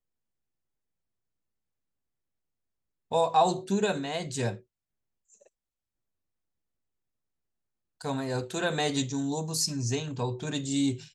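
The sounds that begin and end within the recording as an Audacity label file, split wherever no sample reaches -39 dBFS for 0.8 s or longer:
3.110000	4.570000	sound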